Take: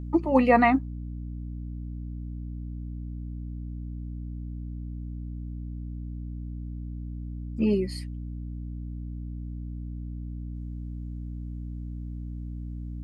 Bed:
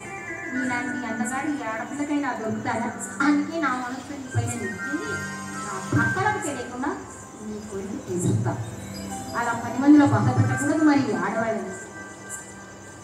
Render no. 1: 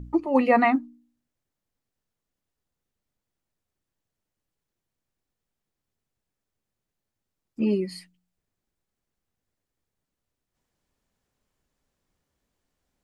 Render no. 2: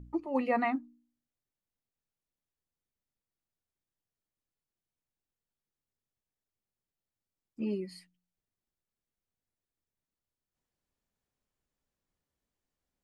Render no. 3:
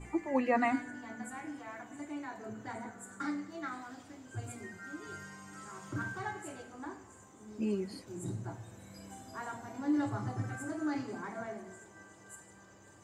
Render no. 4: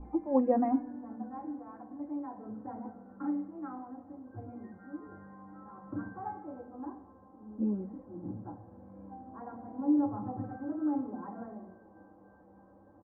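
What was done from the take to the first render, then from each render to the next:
de-hum 60 Hz, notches 5
trim -10 dB
add bed -16.5 dB
inverse Chebyshev low-pass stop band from 5.6 kHz, stop band 80 dB; comb 3.8 ms, depth 73%

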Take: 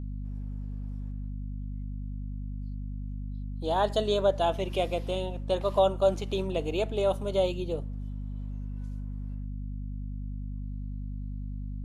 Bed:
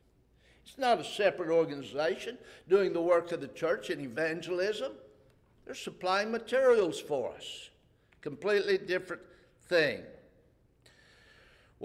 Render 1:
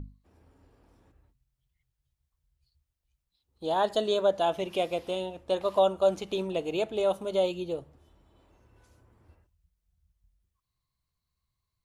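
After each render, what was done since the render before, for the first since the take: hum notches 50/100/150/200/250 Hz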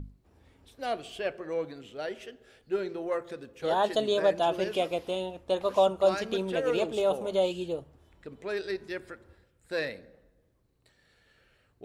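add bed -5 dB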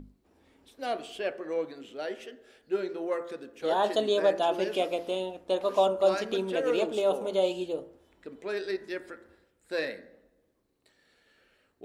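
resonant low shelf 180 Hz -8.5 dB, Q 1.5; de-hum 57.07 Hz, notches 36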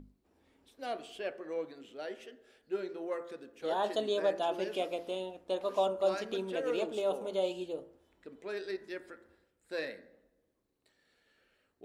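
trim -6 dB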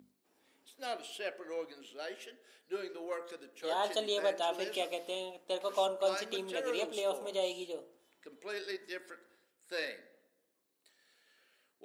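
high-pass 160 Hz 12 dB/octave; tilt EQ +2.5 dB/octave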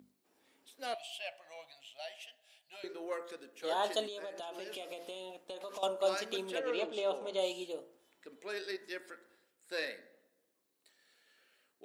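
0.94–2.84 s: FFT filter 130 Hz 0 dB, 200 Hz -20 dB, 430 Hz -30 dB, 660 Hz +3 dB, 1.4 kHz -14 dB, 2.7 kHz +3 dB, 5.2 kHz -2 dB; 4.06–5.83 s: compression 8:1, threshold -40 dBFS; 6.58–7.37 s: low-pass 3.5 kHz -> 5.8 kHz

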